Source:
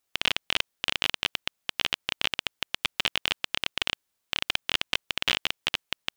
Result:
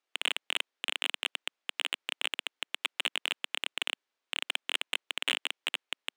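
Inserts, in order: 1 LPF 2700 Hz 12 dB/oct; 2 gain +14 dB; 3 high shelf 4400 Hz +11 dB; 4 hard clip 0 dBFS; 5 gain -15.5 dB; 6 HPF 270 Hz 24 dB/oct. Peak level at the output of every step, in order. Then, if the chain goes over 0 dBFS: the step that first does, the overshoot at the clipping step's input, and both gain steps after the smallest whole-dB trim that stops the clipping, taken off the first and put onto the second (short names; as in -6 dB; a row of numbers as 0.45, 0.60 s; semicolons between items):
-9.0, +5.0, +7.5, 0.0, -15.5, -12.5 dBFS; step 2, 7.5 dB; step 2 +6 dB, step 5 -7.5 dB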